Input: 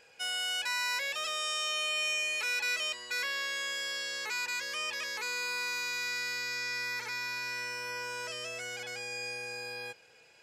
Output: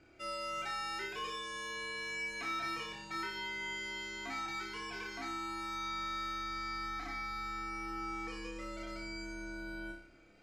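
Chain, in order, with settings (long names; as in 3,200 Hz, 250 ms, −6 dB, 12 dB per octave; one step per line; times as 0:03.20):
spectral tilt −4 dB per octave
frequency shifter −160 Hz
flutter between parallel walls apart 5.1 metres, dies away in 0.5 s
level −4 dB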